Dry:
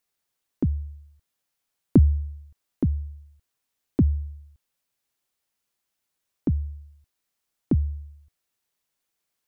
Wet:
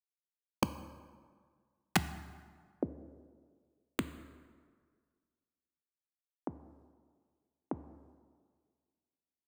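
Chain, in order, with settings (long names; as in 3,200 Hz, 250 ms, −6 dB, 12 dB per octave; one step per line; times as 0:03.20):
downward expander −42 dBFS
bass and treble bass −8 dB, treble +14 dB
band-pass filter sweep 410 Hz → 880 Hz, 0:01.13–0:05.07
tilt shelving filter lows +3 dB, about 740 Hz
wrap-around overflow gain 20.5 dB
dense smooth reverb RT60 1.8 s, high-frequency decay 0.6×, DRR 11.5 dB
level +2.5 dB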